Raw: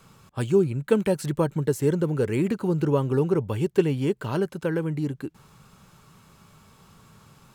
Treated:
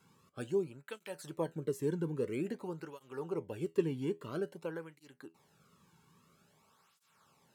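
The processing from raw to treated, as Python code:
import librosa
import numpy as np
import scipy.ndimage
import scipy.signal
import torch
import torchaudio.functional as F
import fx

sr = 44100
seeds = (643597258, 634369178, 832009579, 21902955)

y = fx.comb_fb(x, sr, f0_hz=82.0, decay_s=0.2, harmonics='all', damping=0.0, mix_pct=50)
y = fx.flanger_cancel(y, sr, hz=0.5, depth_ms=1.7)
y = F.gain(torch.from_numpy(y), -6.5).numpy()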